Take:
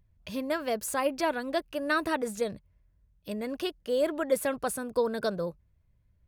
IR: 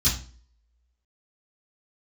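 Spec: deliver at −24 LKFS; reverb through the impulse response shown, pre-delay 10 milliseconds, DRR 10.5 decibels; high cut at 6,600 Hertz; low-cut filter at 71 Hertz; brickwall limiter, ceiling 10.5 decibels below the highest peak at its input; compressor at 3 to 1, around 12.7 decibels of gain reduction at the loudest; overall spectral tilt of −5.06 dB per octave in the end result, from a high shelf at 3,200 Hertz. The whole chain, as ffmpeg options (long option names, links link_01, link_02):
-filter_complex "[0:a]highpass=71,lowpass=6600,highshelf=frequency=3200:gain=-5.5,acompressor=threshold=-38dB:ratio=3,alimiter=level_in=12.5dB:limit=-24dB:level=0:latency=1,volume=-12.5dB,asplit=2[link_01][link_02];[1:a]atrim=start_sample=2205,adelay=10[link_03];[link_02][link_03]afir=irnorm=-1:irlink=0,volume=-21.5dB[link_04];[link_01][link_04]amix=inputs=2:normalize=0,volume=20.5dB"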